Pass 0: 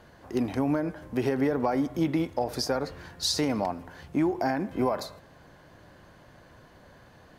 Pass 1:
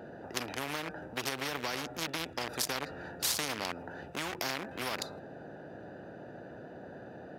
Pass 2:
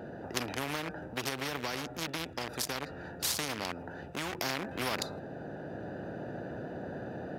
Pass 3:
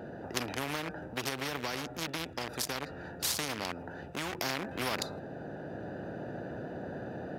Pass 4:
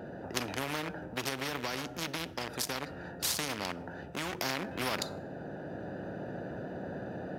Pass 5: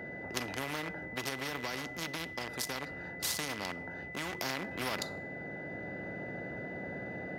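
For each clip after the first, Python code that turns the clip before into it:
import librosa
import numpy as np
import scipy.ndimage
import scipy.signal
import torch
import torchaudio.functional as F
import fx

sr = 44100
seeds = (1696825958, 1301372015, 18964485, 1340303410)

y1 = fx.wiener(x, sr, points=41)
y1 = scipy.signal.sosfilt(scipy.signal.butter(2, 270.0, 'highpass', fs=sr, output='sos'), y1)
y1 = fx.spectral_comp(y1, sr, ratio=4.0)
y2 = fx.low_shelf(y1, sr, hz=260.0, db=5.0)
y2 = fx.rider(y2, sr, range_db=5, speed_s=2.0)
y3 = y2
y4 = fx.rev_fdn(y3, sr, rt60_s=0.71, lf_ratio=1.0, hf_ratio=0.75, size_ms=32.0, drr_db=16.0)
y5 = y4 + 10.0 ** (-41.0 / 20.0) * np.sin(2.0 * np.pi * 2000.0 * np.arange(len(y4)) / sr)
y5 = y5 * 10.0 ** (-2.5 / 20.0)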